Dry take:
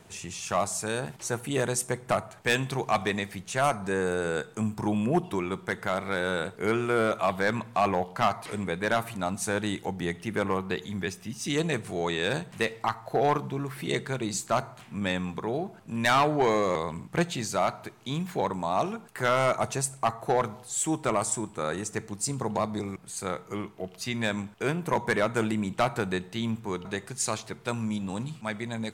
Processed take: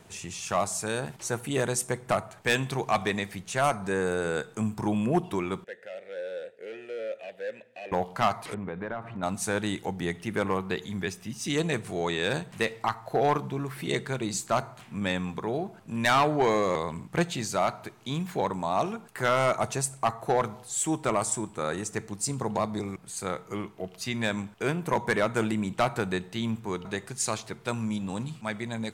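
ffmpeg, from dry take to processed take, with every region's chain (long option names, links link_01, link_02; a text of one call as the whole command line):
ffmpeg -i in.wav -filter_complex "[0:a]asettb=1/sr,asplit=3[link_01][link_02][link_03];[link_01]atrim=end=5.644[link_04];[link_02]atrim=start=5.64:end=7.92,asetpts=PTS-STARTPTS,afade=type=in:duration=0.004:curve=qsin,afade=type=out:start_time=2.276:duration=0.004:curve=qsin,asoftclip=type=hard:threshold=-23.5dB,asplit=3[link_05][link_06][link_07];[link_05]bandpass=frequency=530:width_type=q:width=8,volume=0dB[link_08];[link_06]bandpass=frequency=1840:width_type=q:width=8,volume=-6dB[link_09];[link_07]bandpass=frequency=2480:width_type=q:width=8,volume=-9dB[link_10];[link_08][link_09][link_10]amix=inputs=3:normalize=0,highshelf=frequency=4800:gain=11.5[link_11];[link_03]atrim=start=7.916[link_12];[link_04][link_11]acrossfade=duration=0.004:curve1=hsin:curve2=qsin[link_13];[link_13][link_12]acrossfade=duration=0.004:curve1=qsin:curve2=hsin,asettb=1/sr,asplit=3[link_14][link_15][link_16];[link_14]atrim=end=8.544[link_17];[link_15]atrim=start=8.54:end=9.23,asetpts=PTS-STARTPTS,afade=type=in:duration=0.004:curve=qsin,afade=type=out:start_time=0.686:duration=0.004:curve=qsin,lowpass=1600,acompressor=threshold=-30dB:ratio=6:attack=3.2:release=140:knee=1:detection=peak[link_18];[link_16]atrim=start=9.226[link_19];[link_17][link_18]acrossfade=duration=0.004:curve1=hsin:curve2=qsin[link_20];[link_20][link_19]acrossfade=duration=0.004:curve1=qsin:curve2=hsin" out.wav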